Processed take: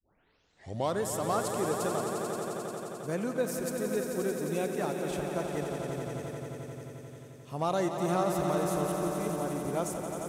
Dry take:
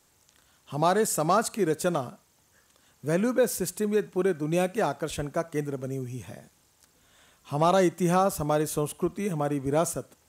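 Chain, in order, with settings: tape start-up on the opening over 1.01 s; echo with a slow build-up 88 ms, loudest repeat 5, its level -9 dB; trim -8 dB

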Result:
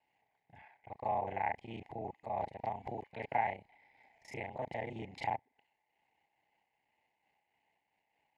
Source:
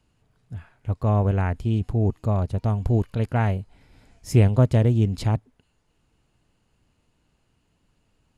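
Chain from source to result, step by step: time reversed locally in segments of 31 ms; peak limiter -13.5 dBFS, peak gain reduction 8.5 dB; two resonant band-passes 1.3 kHz, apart 1.3 oct; random flutter of the level, depth 60%; trim +8 dB

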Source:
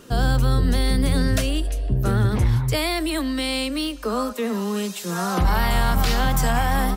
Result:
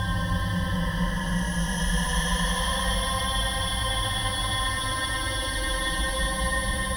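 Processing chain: wind noise 130 Hz -23 dBFS; resonant low shelf 560 Hz -9.5 dB, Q 3; on a send: thinning echo 319 ms, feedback 64%, level -6 dB; on the sum: compression, threshold -24 dBFS, peak gain reduction 9.5 dB; crossover distortion -43.5 dBFS; rippled EQ curve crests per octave 1.2, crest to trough 18 dB; Paulstretch 23×, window 0.10 s, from 0.64 s

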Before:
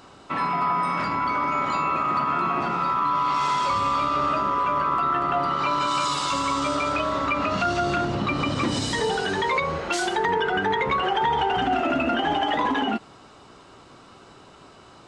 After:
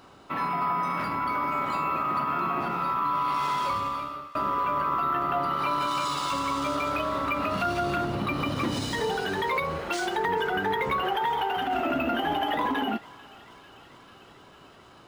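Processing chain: 3.67–4.35 s: fade out; 11.16–11.75 s: bass shelf 250 Hz -10.5 dB; thinning echo 444 ms, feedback 82%, high-pass 920 Hz, level -20.5 dB; decimation joined by straight lines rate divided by 3×; trim -3.5 dB

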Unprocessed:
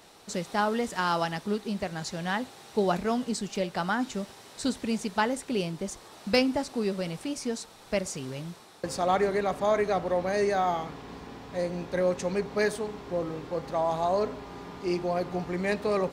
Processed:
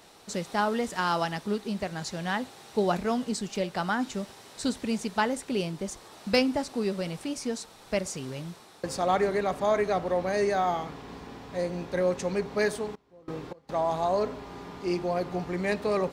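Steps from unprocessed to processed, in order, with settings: 12.85–13.80 s: trance gate "..xx....xxx" 183 bpm -24 dB

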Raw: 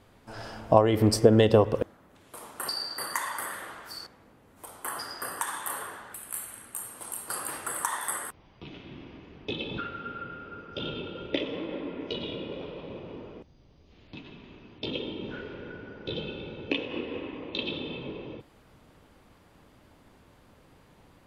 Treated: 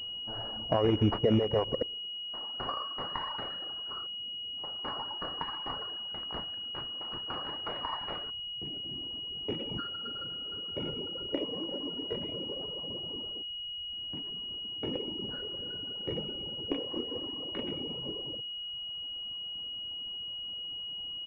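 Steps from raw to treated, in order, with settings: rattle on loud lows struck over -26 dBFS, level -19 dBFS; frequency-shifting echo 114 ms, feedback 47%, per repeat -39 Hz, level -22 dB; peak limiter -15.5 dBFS, peak gain reduction 11.5 dB; reverb removal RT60 1.7 s; class-D stage that switches slowly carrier 2.9 kHz

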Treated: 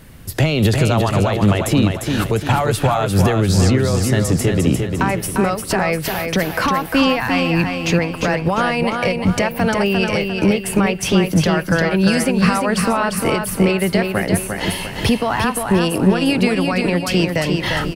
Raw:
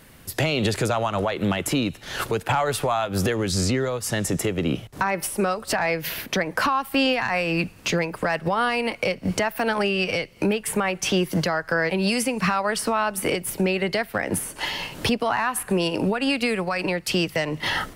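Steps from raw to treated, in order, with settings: bass shelf 210 Hz +11 dB; on a send: feedback delay 350 ms, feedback 43%, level -5 dB; on the sum: trim +2.5 dB

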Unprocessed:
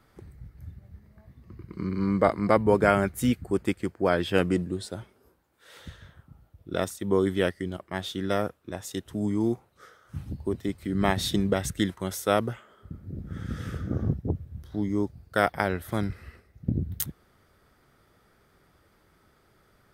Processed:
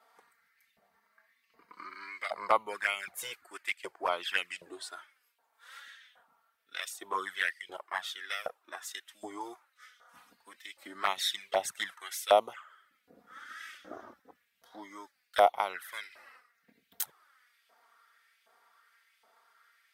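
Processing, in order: LFO high-pass saw up 1.3 Hz 660–2800 Hz; touch-sensitive flanger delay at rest 4.5 ms, full sweep at -22 dBFS

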